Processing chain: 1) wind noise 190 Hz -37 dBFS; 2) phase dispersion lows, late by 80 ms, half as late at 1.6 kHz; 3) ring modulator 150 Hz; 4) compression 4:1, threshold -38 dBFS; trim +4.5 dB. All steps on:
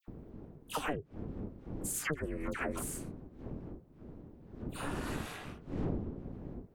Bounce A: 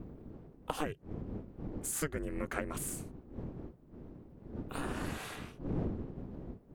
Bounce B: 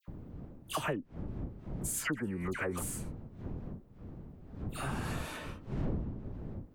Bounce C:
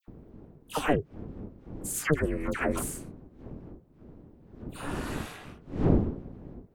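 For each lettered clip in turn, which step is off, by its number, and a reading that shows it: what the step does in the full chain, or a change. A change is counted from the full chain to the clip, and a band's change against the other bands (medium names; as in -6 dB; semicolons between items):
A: 2, 2 kHz band -2.5 dB; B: 3, momentary loudness spread change -1 LU; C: 4, mean gain reduction 3.0 dB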